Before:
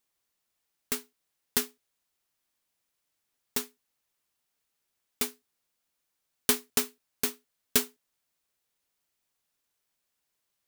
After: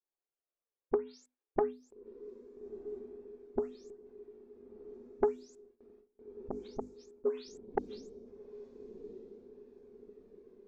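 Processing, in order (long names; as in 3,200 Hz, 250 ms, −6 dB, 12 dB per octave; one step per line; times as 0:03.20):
every frequency bin delayed by itself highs late, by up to 337 ms
notch filter 3,000 Hz
gate with flip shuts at −20 dBFS, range −36 dB
parametric band 400 Hz +14 dB 1.4 octaves
mains-hum notches 50/100/150/200/250/300 Hz
treble cut that deepens with the level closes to 320 Hz, closed at −27.5 dBFS
flanger 0.31 Hz, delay 1.1 ms, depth 1.5 ms, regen +42%
on a send: feedback delay with all-pass diffusion 1,333 ms, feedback 47%, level −14 dB
on the sum: noise gate with hold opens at −57 dBFS
parametric band 150 Hz −14.5 dB 1 octave
low-pass that shuts in the quiet parts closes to 1,600 Hz, open at −37.5 dBFS
saturating transformer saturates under 590 Hz
level +9.5 dB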